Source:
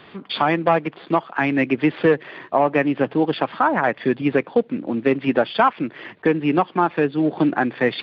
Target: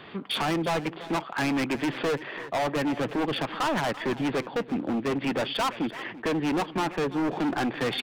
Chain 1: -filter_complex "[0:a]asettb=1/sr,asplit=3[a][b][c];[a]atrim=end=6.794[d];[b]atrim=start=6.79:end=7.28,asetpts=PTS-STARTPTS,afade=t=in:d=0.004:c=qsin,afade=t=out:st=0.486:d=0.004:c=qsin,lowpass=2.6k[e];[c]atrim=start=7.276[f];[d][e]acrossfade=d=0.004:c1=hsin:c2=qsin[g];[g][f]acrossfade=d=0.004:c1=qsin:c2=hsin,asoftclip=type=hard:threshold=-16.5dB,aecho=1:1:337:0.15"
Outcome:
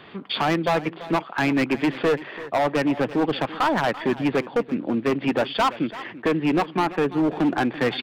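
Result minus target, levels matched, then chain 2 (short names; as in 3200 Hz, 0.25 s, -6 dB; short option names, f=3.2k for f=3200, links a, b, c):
hard clip: distortion -5 dB
-filter_complex "[0:a]asettb=1/sr,asplit=3[a][b][c];[a]atrim=end=6.794[d];[b]atrim=start=6.79:end=7.28,asetpts=PTS-STARTPTS,afade=t=in:d=0.004:c=qsin,afade=t=out:st=0.486:d=0.004:c=qsin,lowpass=2.6k[e];[c]atrim=start=7.276[f];[d][e]acrossfade=d=0.004:c1=hsin:c2=qsin[g];[g][f]acrossfade=d=0.004:c1=qsin:c2=hsin,asoftclip=type=hard:threshold=-24dB,aecho=1:1:337:0.15"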